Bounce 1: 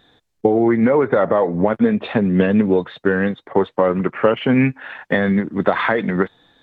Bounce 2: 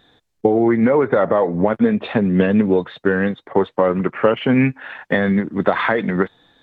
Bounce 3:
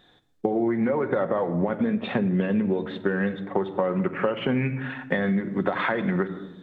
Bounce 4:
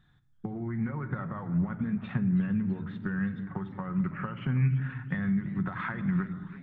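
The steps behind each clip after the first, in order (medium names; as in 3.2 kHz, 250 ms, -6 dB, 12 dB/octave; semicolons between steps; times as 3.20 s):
no audible change
on a send at -8.5 dB: reverberation RT60 1.0 s, pre-delay 5 ms; on the sum: compression, threshold -17 dBFS, peak gain reduction 8.5 dB; trim -3.5 dB
FFT filter 150 Hz 0 dB, 250 Hz -14 dB, 520 Hz -28 dB, 1.3 kHz -10 dB, 3.7 kHz -21 dB, 5.3 kHz -16 dB; modulated delay 331 ms, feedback 59%, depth 179 cents, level -17 dB; trim +4 dB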